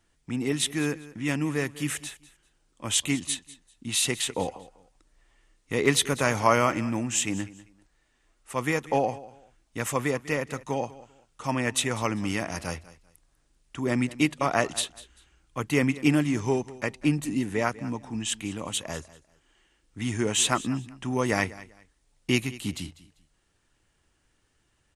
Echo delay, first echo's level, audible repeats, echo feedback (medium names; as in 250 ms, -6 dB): 196 ms, -18.5 dB, 2, 24%